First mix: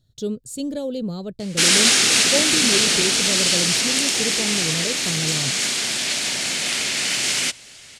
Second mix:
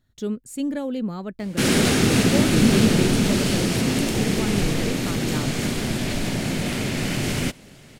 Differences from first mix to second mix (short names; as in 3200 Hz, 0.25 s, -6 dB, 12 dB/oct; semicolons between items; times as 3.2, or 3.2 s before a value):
speech: add ten-band EQ 125 Hz -10 dB, 250 Hz +5 dB, 500 Hz -6 dB, 1000 Hz +6 dB, 2000 Hz +11 dB, 4000 Hz -10 dB, 8000 Hz -4 dB; background: remove weighting filter ITU-R 468